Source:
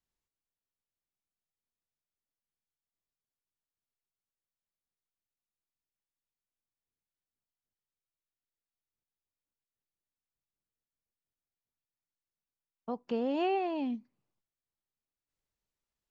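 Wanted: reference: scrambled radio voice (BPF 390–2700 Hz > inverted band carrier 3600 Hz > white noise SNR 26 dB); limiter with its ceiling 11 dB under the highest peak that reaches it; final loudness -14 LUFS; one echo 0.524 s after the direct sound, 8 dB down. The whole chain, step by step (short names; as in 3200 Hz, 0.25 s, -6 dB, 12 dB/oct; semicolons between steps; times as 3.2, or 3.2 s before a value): limiter -32.5 dBFS; BPF 390–2700 Hz; echo 0.524 s -8 dB; inverted band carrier 3600 Hz; white noise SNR 26 dB; gain +28 dB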